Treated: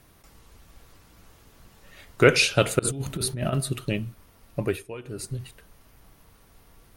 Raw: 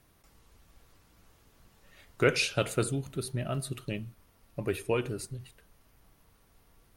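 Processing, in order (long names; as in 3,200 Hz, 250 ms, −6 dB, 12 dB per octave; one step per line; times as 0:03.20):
0:02.79–0:03.53: compressor whose output falls as the input rises −35 dBFS, ratio −0.5
0:04.59–0:05.34: duck −17 dB, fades 0.30 s linear
level +8 dB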